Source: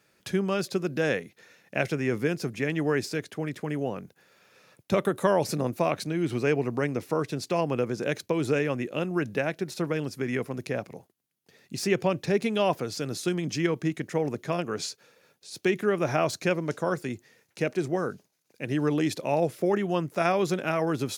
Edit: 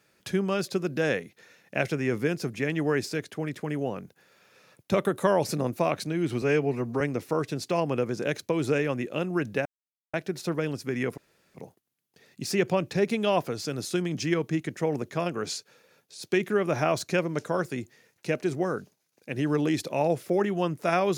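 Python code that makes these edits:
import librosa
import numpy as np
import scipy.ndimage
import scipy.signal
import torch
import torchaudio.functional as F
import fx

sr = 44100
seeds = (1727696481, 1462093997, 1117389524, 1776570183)

y = fx.edit(x, sr, fx.stretch_span(start_s=6.42, length_s=0.39, factor=1.5),
    fx.insert_silence(at_s=9.46, length_s=0.48),
    fx.room_tone_fill(start_s=10.5, length_s=0.37), tone=tone)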